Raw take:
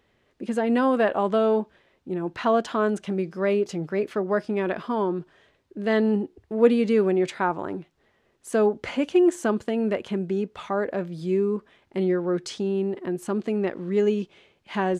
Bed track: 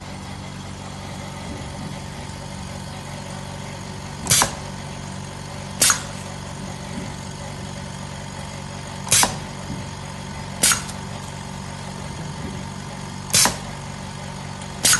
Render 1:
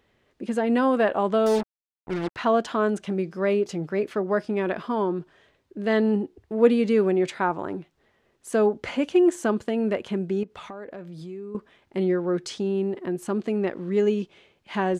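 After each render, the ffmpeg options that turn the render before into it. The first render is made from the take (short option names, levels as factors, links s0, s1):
-filter_complex "[0:a]asettb=1/sr,asplit=3[s0][s1][s2];[s0]atrim=end=1.464[s3];[s1]atrim=start=1.46:end=2.36,asetpts=PTS-STARTPTS,afade=t=in:d=0.004:c=qsin,afade=t=out:st=0.896:d=0.004:c=qsin,acrusher=bits=4:mix=0:aa=0.5[s4];[s2]atrim=start=2.356[s5];[s3][s4]acrossfade=d=0.004:c1=hsin:c2=qsin[s6];[s6][s5]acrossfade=d=0.004:c1=qsin:c2=hsin,asettb=1/sr,asplit=3[s7][s8][s9];[s7]atrim=end=10.434[s10];[s8]atrim=start=10.43:end=11.55,asetpts=PTS-STARTPTS,afade=t=in:d=0.004:c=qsin,afade=t=out:st=1.116:d=0.004:c=qsin,acompressor=threshold=0.0158:ratio=4:attack=3.2:release=140:knee=1:detection=peak[s11];[s9]atrim=start=11.546[s12];[s10][s11]acrossfade=d=0.004:c1=hsin:c2=qsin[s13];[s13][s12]acrossfade=d=0.004:c1=qsin:c2=hsin"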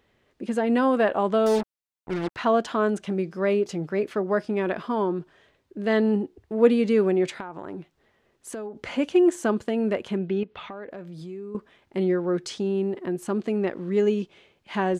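-filter_complex "[0:a]asettb=1/sr,asplit=3[s0][s1][s2];[s0]atrim=end=7.404[s3];[s1]atrim=start=7.4:end=8.91,asetpts=PTS-STARTPTS,afade=t=in:d=0.004:c=qsin,afade=t=out:st=1.506:d=0.004:c=qsin,acompressor=threshold=0.0316:ratio=16:attack=3.2:release=140:knee=1:detection=peak[s4];[s2]atrim=start=8.906[s5];[s3][s4]acrossfade=d=0.004:c1=hsin:c2=qsin[s6];[s6][s5]acrossfade=d=0.004:c1=qsin:c2=hsin,asettb=1/sr,asplit=3[s7][s8][s9];[s7]atrim=end=10.174[s10];[s8]atrim=start=10.17:end=10.88,asetpts=PTS-STARTPTS,afade=t=in:d=0.004:c=qsin,afade=t=out:st=0.706:d=0.004:c=qsin,lowpass=f=3200:t=q:w=1.6[s11];[s9]atrim=start=10.876[s12];[s10][s11]acrossfade=d=0.004:c1=hsin:c2=qsin[s13];[s13][s12]acrossfade=d=0.004:c1=qsin:c2=hsin"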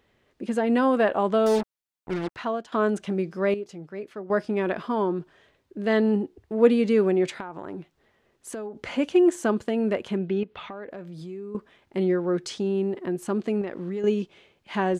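-filter_complex "[0:a]asettb=1/sr,asplit=3[s0][s1][s2];[s0]atrim=end=13.614[s3];[s1]atrim=start=13.61:end=14.04,asetpts=PTS-STARTPTS,afade=t=in:d=0.004:c=qsin,afade=t=out:st=0.426:d=0.004:c=qsin,acompressor=threshold=0.0501:ratio=12:attack=3.2:release=140:knee=1:detection=peak[s4];[s2]atrim=start=14.036[s5];[s3][s4]acrossfade=d=0.004:c1=hsin:c2=qsin[s6];[s6][s5]acrossfade=d=0.004:c1=qsin:c2=hsin,asplit=4[s7][s8][s9][s10];[s7]atrim=end=2.72,asetpts=PTS-STARTPTS,afade=t=out:st=2.13:d=0.59:silence=0.141254[s11];[s8]atrim=start=2.72:end=3.542,asetpts=PTS-STARTPTS,afade=t=in:d=0.004:c=hsin:silence=0.141254[s12];[s9]atrim=start=3.538:end=4.302,asetpts=PTS-STARTPTS,volume=0.316[s13];[s10]atrim=start=4.298[s14];[s11][s12]concat=n=2:v=0:a=1[s15];[s15][s13]acrossfade=d=0.004:c1=hsin:c2=hsin[s16];[s16][s14]acrossfade=d=0.004:c1=hsin:c2=hsin"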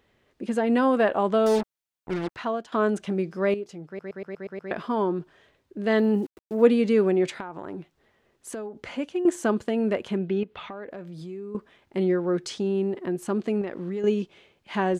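-filter_complex "[0:a]asettb=1/sr,asplit=3[s0][s1][s2];[s0]atrim=end=5.984[s3];[s1]atrim=start=5.98:end=6.66,asetpts=PTS-STARTPTS,afade=t=in:d=0.004:c=qsin,afade=t=out:st=0.676:d=0.004:c=qsin,aeval=exprs='val(0)*gte(abs(val(0)),0.00501)':c=same[s4];[s2]atrim=start=6.656[s5];[s3][s4]acrossfade=d=0.004:c1=hsin:c2=qsin[s6];[s6][s5]acrossfade=d=0.004:c1=qsin:c2=hsin,asplit=9[s7][s8][s9][s10][s11][s12][s13][s14][s15];[s7]atrim=end=3.992[s16];[s8]atrim=start=3.868:end=3.992[s17];[s9]atrim=start=3.868:end=3.992[s18];[s10]atrim=start=3.868:end=3.992[s19];[s11]atrim=start=3.868:end=3.992[s20];[s12]atrim=start=3.868:end=3.992[s21];[s13]atrim=start=3.868:end=3.992[s22];[s14]atrim=start=4.708:end=9.25,asetpts=PTS-STARTPTS,afade=t=out:st=3.882:d=0.66:silence=0.266073[s23];[s15]atrim=start=9.25,asetpts=PTS-STARTPTS,afade=t=in:d=0.004:c=hsin:silence=0.266073[s24];[s16][s17]acrossfade=d=0.004:c1=hsin:c2=hsin[s25];[s25][s18]acrossfade=d=0.004:c1=hsin:c2=hsin[s26];[s26][s19]acrossfade=d=0.004:c1=hsin:c2=hsin[s27];[s27][s20]acrossfade=d=0.004:c1=hsin:c2=hsin[s28];[s28][s21]acrossfade=d=0.004:c1=hsin:c2=hsin[s29];[s29][s22]acrossfade=d=0.004:c1=hsin:c2=hsin[s30];[s23][s24]concat=n=2:v=0:a=1[s31];[s30][s31]acrossfade=d=0.004:c1=hsin:c2=hsin"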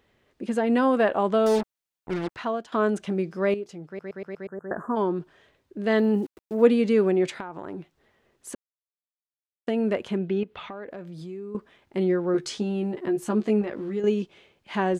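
-filter_complex "[0:a]asplit=3[s0][s1][s2];[s0]afade=t=out:st=4.46:d=0.02[s3];[s1]asuperstop=centerf=3500:order=20:qfactor=0.74,afade=t=in:st=4.46:d=0.02,afade=t=out:st=4.95:d=0.02[s4];[s2]afade=t=in:st=4.95:d=0.02[s5];[s3][s4][s5]amix=inputs=3:normalize=0,asettb=1/sr,asplit=3[s6][s7][s8];[s6]atrim=end=12.334[s9];[s7]atrim=start=12.33:end=14,asetpts=PTS-STARTPTS,afade=t=in:d=0.004:c=qsin,afade=t=out:st=1.666:d=0.004:c=qsin,asplit=2[s10][s11];[s11]adelay=14,volume=0.631[s12];[s10][s12]amix=inputs=2:normalize=0,atrim=end_sample=73647[s13];[s8]atrim=start=13.996[s14];[s9][s13]acrossfade=d=0.004:c1=hsin:c2=qsin[s15];[s15][s14]acrossfade=d=0.004:c1=qsin:c2=hsin,asplit=3[s16][s17][s18];[s16]atrim=end=8.55,asetpts=PTS-STARTPTS,afade=t=out:st=8.546:d=0.004:c=hsin[s19];[s17]atrim=start=8.55:end=9.67,asetpts=PTS-STARTPTS,volume=0[s20];[s18]atrim=start=9.67,asetpts=PTS-STARTPTS,afade=t=in:d=0.004:c=hsin[s21];[s19][s20][s21]concat=n=3:v=0:a=1"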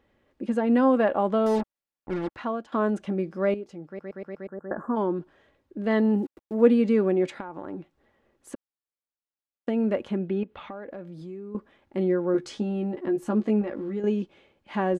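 -af "highshelf=f=2300:g=-10,aecho=1:1:3.6:0.32"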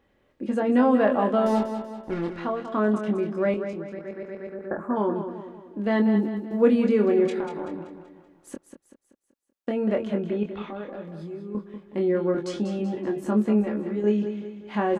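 -filter_complex "[0:a]asplit=2[s0][s1];[s1]adelay=24,volume=0.562[s2];[s0][s2]amix=inputs=2:normalize=0,aecho=1:1:191|382|573|764|955:0.355|0.163|0.0751|0.0345|0.0159"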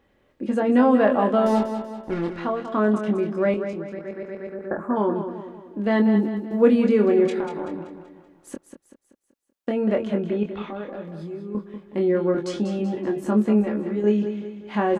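-af "volume=1.33"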